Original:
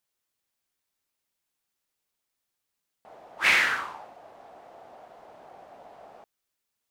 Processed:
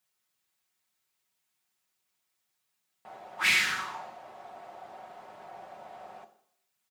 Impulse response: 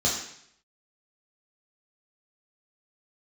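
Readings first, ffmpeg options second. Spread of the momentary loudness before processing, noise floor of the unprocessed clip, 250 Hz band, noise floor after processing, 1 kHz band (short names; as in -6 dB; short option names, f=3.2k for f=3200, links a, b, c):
14 LU, -83 dBFS, -2.0 dB, -80 dBFS, -3.0 dB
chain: -filter_complex "[0:a]highpass=67,equalizer=f=170:w=0.93:g=-3,aecho=1:1:5.4:0.52,acrossover=split=300|3000[a][b][c];[b]acompressor=threshold=-33dB:ratio=6[d];[a][d][c]amix=inputs=3:normalize=0,asplit=2[e][f];[1:a]atrim=start_sample=2205[g];[f][g]afir=irnorm=-1:irlink=0,volume=-20dB[h];[e][h]amix=inputs=2:normalize=0,volume=2dB"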